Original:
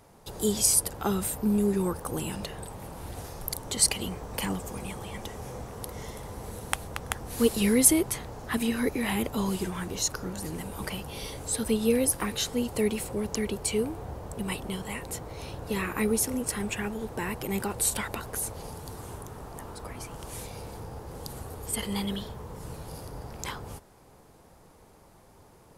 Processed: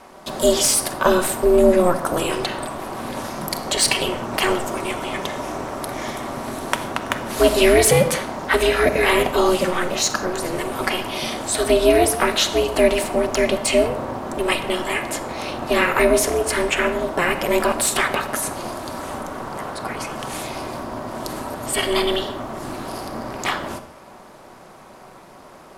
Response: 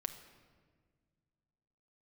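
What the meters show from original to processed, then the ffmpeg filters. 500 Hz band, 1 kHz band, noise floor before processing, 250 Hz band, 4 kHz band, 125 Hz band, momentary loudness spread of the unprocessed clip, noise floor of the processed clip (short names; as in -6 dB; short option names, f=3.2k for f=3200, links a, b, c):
+14.0 dB, +15.0 dB, -56 dBFS, +5.0 dB, +11.5 dB, +4.5 dB, 17 LU, -44 dBFS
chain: -filter_complex "[0:a]aeval=exprs='val(0)*sin(2*PI*180*n/s)':c=same,acontrast=88,asplit=2[a][b];[b]highpass=f=720:p=1,volume=15dB,asoftclip=type=tanh:threshold=-2dB[c];[a][c]amix=inputs=2:normalize=0,lowpass=f=2.8k:p=1,volume=-6dB[d];[1:a]atrim=start_sample=2205,afade=t=out:st=0.26:d=0.01,atrim=end_sample=11907,asetrate=48510,aresample=44100[e];[d][e]afir=irnorm=-1:irlink=0,volume=5dB"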